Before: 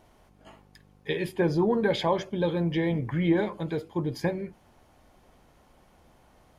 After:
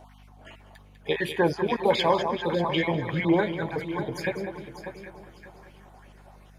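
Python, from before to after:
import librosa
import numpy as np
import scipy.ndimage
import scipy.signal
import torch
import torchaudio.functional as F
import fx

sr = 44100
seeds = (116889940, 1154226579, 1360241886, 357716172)

y = fx.spec_dropout(x, sr, seeds[0], share_pct=29)
y = fx.add_hum(y, sr, base_hz=50, snr_db=19)
y = fx.low_shelf(y, sr, hz=260.0, db=-6.5)
y = fx.echo_heads(y, sr, ms=198, heads='first and third', feedback_pct=43, wet_db=-11)
y = fx.bell_lfo(y, sr, hz=2.7, low_hz=680.0, high_hz=3000.0, db=10)
y = y * 10.0 ** (3.0 / 20.0)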